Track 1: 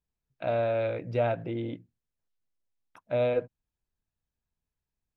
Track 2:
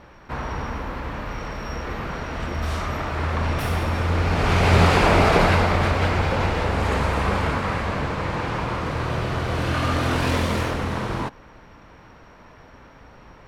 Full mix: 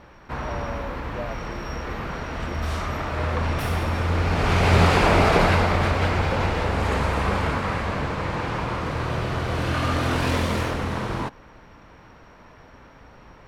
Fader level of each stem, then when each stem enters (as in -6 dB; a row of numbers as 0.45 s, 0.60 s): -8.5 dB, -1.0 dB; 0.00 s, 0.00 s